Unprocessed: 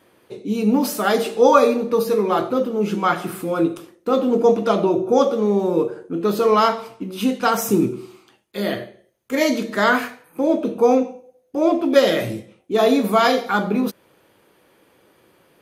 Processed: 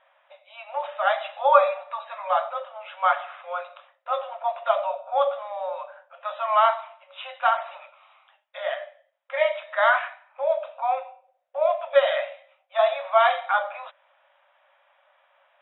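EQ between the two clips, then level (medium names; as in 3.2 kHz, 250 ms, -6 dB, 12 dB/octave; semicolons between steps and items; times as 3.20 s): brick-wall FIR band-pass 540–3900 Hz; distance through air 260 m; 0.0 dB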